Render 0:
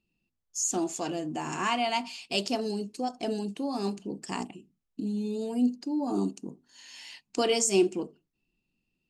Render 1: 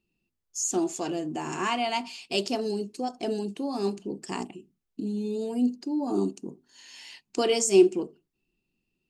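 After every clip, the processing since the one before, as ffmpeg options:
ffmpeg -i in.wav -af "equalizer=frequency=380:width_type=o:width=0.34:gain=6.5" out.wav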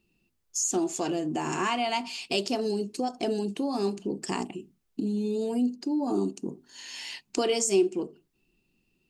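ffmpeg -i in.wav -af "acompressor=threshold=-37dB:ratio=2,volume=7dB" out.wav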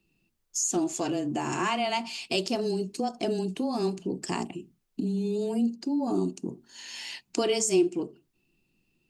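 ffmpeg -i in.wav -af "afreqshift=-14" out.wav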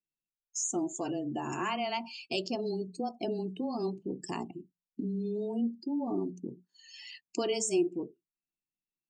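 ffmpeg -i in.wav -af "bandreject=frequency=60:width_type=h:width=6,bandreject=frequency=120:width_type=h:width=6,bandreject=frequency=180:width_type=h:width=6,afftdn=noise_reduction=26:noise_floor=-38,volume=-5dB" out.wav

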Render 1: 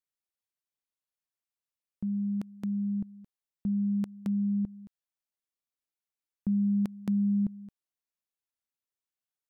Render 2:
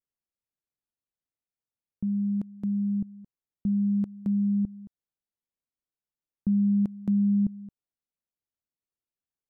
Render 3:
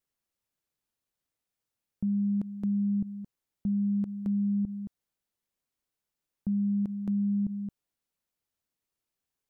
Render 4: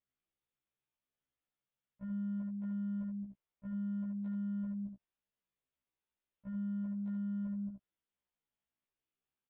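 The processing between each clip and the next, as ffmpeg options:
ffmpeg -i in.wav -af "tiltshelf=frequency=830:gain=8,volume=-3.5dB" out.wav
ffmpeg -i in.wav -af "alimiter=level_in=6.5dB:limit=-24dB:level=0:latency=1:release=46,volume=-6.5dB,volume=6.5dB" out.wav
ffmpeg -i in.wav -af "aresample=8000,asoftclip=type=tanh:threshold=-36.5dB,aresample=44100,aecho=1:1:74:0.562,afftfilt=real='re*1.73*eq(mod(b,3),0)':imag='im*1.73*eq(mod(b,3),0)':win_size=2048:overlap=0.75,volume=-3.5dB" out.wav

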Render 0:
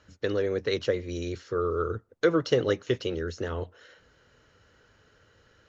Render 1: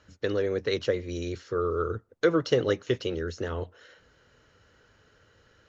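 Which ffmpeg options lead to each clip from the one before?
ffmpeg -i in.wav -af anull out.wav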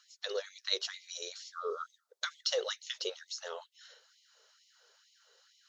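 ffmpeg -i in.wav -af "highshelf=frequency=3100:width_type=q:width=1.5:gain=9,afftfilt=real='re*gte(b*sr/1024,360*pow(2000/360,0.5+0.5*sin(2*PI*2.2*pts/sr)))':imag='im*gte(b*sr/1024,360*pow(2000/360,0.5+0.5*sin(2*PI*2.2*pts/sr)))':win_size=1024:overlap=0.75,volume=-5dB" out.wav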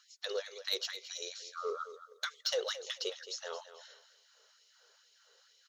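ffmpeg -i in.wav -af "asoftclip=type=tanh:threshold=-23dB,aecho=1:1:219|438|657:0.224|0.056|0.014" out.wav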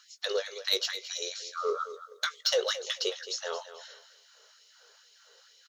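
ffmpeg -i in.wav -filter_complex "[0:a]asplit=2[link_01][link_02];[link_02]adelay=19,volume=-12dB[link_03];[link_01][link_03]amix=inputs=2:normalize=0,volume=6.5dB" out.wav

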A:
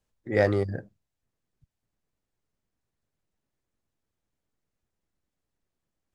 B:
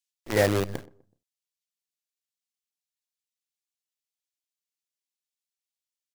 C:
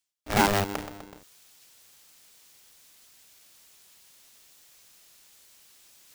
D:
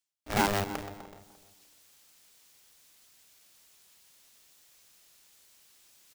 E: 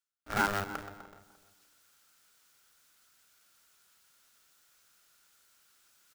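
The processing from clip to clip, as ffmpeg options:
ffmpeg -i in.wav -filter_complex "[0:a]acrossover=split=2500[link_01][link_02];[link_01]acrusher=bits=5:dc=4:mix=0:aa=0.000001[link_03];[link_03][link_02]amix=inputs=2:normalize=0,asplit=2[link_04][link_05];[link_05]adelay=125,lowpass=frequency=1000:poles=1,volume=-20.5dB,asplit=2[link_06][link_07];[link_07]adelay=125,lowpass=frequency=1000:poles=1,volume=0.41,asplit=2[link_08][link_09];[link_09]adelay=125,lowpass=frequency=1000:poles=1,volume=0.41[link_10];[link_04][link_06][link_08][link_10]amix=inputs=4:normalize=0" out.wav
ffmpeg -i in.wav -af "areverse,acompressor=mode=upward:threshold=-29dB:ratio=2.5,areverse,aeval=exprs='val(0)*sgn(sin(2*PI*300*n/s))':channel_layout=same" out.wav
ffmpeg -i in.wav -filter_complex "[0:a]asplit=2[link_01][link_02];[link_02]adelay=299,lowpass=frequency=1700:poles=1,volume=-16dB,asplit=2[link_03][link_04];[link_04]adelay=299,lowpass=frequency=1700:poles=1,volume=0.31,asplit=2[link_05][link_06];[link_06]adelay=299,lowpass=frequency=1700:poles=1,volume=0.31[link_07];[link_01][link_03][link_05][link_07]amix=inputs=4:normalize=0,volume=-4.5dB" out.wav
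ffmpeg -i in.wav -af "equalizer=frequency=1400:width=3.9:gain=13.5,volume=-6dB" out.wav

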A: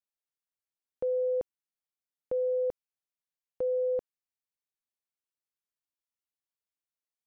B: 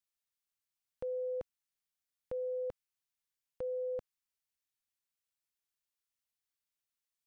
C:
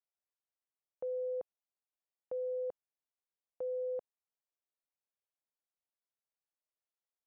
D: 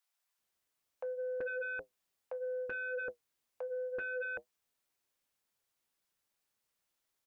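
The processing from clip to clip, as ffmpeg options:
ffmpeg -i in.wav -af "equalizer=frequency=420:width=0.58:gain=-12,volume=3dB" out.wav
ffmpeg -i in.wav -af "bandpass=frequency=620:width_type=q:width=1.5:csg=0,volume=1.5dB" out.wav
ffmpeg -i in.wav -filter_complex "[0:a]acrossover=split=660[link_01][link_02];[link_01]adelay=380[link_03];[link_03][link_02]amix=inputs=2:normalize=0,flanger=delay=6.4:depth=5.2:regen=-62:speed=0.66:shape=triangular,aeval=exprs='0.0119*sin(PI/2*2.51*val(0)/0.0119)':channel_layout=same,volume=4dB" out.wav

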